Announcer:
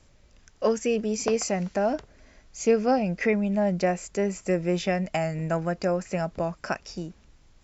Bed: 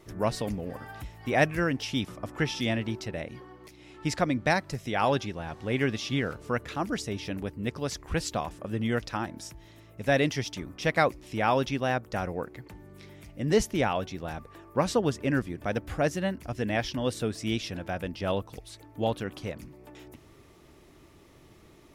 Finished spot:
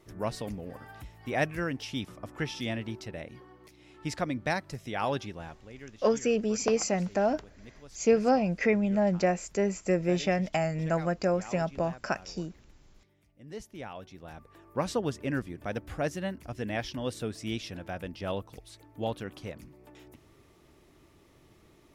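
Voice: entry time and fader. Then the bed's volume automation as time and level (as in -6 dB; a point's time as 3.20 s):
5.40 s, -1.5 dB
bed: 5.46 s -5 dB
5.73 s -20 dB
13.44 s -20 dB
14.72 s -4.5 dB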